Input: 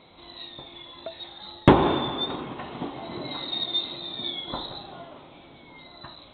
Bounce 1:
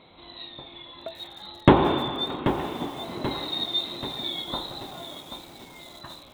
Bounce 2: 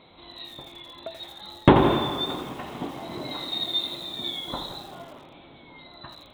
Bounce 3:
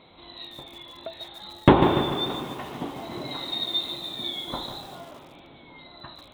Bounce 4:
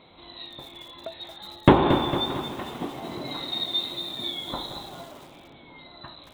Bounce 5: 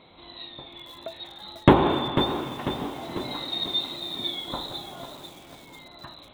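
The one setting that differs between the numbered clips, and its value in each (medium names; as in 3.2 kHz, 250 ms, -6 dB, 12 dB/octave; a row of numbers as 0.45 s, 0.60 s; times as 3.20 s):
bit-crushed delay, time: 784 ms, 83 ms, 146 ms, 227 ms, 495 ms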